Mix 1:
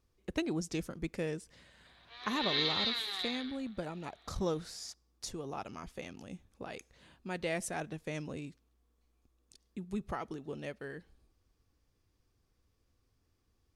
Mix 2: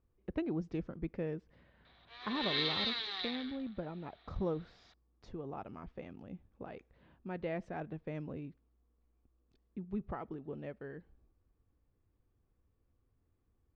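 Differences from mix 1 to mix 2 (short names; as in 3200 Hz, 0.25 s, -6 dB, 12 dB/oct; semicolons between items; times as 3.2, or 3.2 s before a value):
speech: add tape spacing loss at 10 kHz 38 dB; master: add air absorption 90 m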